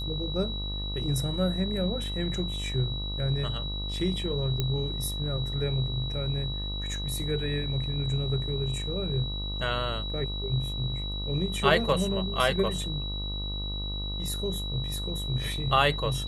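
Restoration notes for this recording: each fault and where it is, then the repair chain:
buzz 50 Hz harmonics 26 -34 dBFS
tone 3900 Hz -35 dBFS
4.6 pop -14 dBFS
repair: de-click; notch 3900 Hz, Q 30; de-hum 50 Hz, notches 26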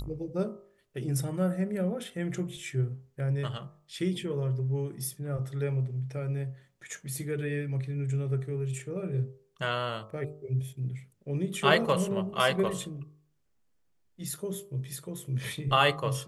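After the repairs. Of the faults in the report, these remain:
none

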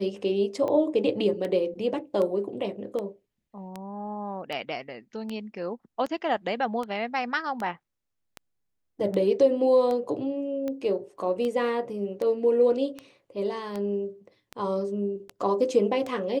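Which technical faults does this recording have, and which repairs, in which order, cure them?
tick 78 rpm -20 dBFS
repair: de-click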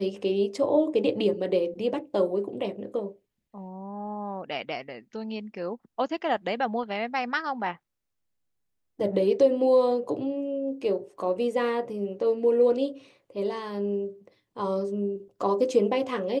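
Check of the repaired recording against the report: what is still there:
none

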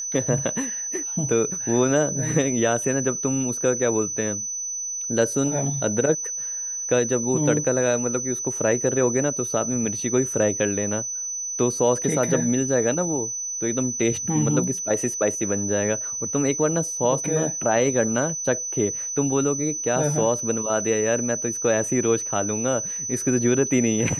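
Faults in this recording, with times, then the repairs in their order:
tone 6000 Hz -27 dBFS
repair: notch 6000 Hz, Q 30

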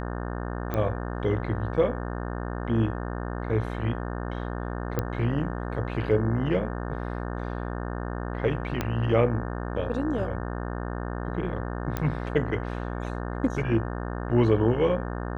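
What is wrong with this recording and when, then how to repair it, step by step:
buzz 60 Hz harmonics 30 -32 dBFS
0.74 pop -16 dBFS
4.99 pop -13 dBFS
8.81 pop -12 dBFS
11.97 pop -14 dBFS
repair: de-click; de-hum 60 Hz, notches 30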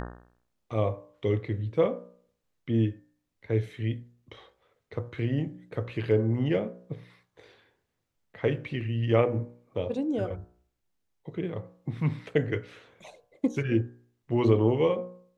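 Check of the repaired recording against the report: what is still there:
8.81 pop

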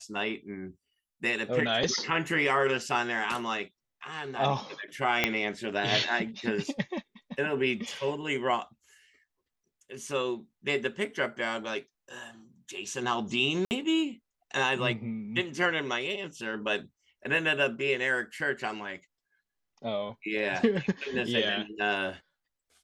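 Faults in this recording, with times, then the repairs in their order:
5.24 pop -9 dBFS
13.65–13.71 gap 59 ms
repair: de-click; interpolate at 13.65, 59 ms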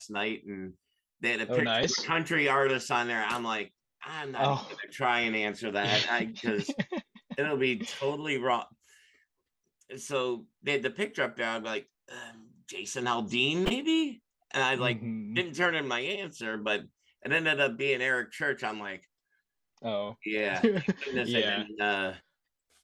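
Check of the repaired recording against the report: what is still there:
5.24 pop

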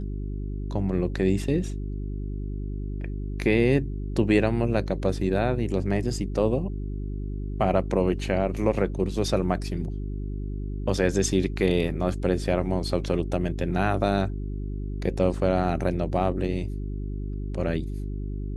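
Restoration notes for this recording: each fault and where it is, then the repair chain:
hum 50 Hz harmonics 8 -31 dBFS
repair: de-hum 50 Hz, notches 8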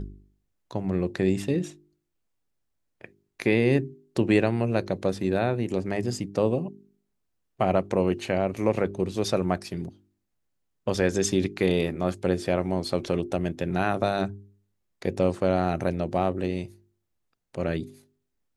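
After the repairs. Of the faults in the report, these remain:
none

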